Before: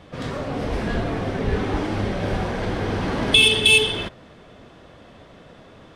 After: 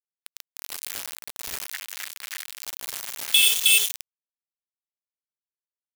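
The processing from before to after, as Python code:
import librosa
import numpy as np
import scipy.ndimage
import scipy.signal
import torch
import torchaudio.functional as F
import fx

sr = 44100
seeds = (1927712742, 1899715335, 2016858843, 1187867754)

y = np.where(np.abs(x) >= 10.0 ** (-18.0 / 20.0), x, 0.0)
y = fx.ring_mod(y, sr, carrier_hz=1800.0, at=(1.67, 2.59), fade=0.02)
y = librosa.effects.preemphasis(y, coef=0.97, zi=[0.0])
y = y * 10.0 ** (3.0 / 20.0)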